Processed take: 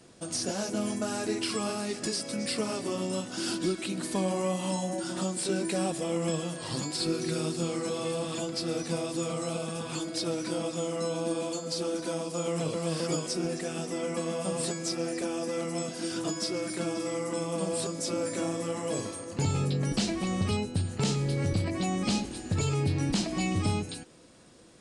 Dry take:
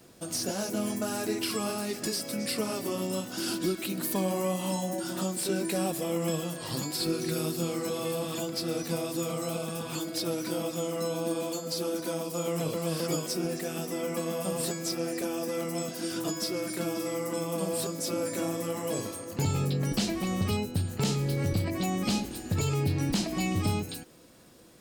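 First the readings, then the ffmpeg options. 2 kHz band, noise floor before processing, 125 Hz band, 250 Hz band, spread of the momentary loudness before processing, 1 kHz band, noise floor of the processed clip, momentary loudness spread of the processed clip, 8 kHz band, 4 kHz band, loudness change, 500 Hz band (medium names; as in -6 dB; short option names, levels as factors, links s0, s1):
0.0 dB, -41 dBFS, 0.0 dB, 0.0 dB, 4 LU, 0.0 dB, -41 dBFS, 4 LU, 0.0 dB, 0.0 dB, 0.0 dB, 0.0 dB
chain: -ar 22050 -c:a libvorbis -b:a 64k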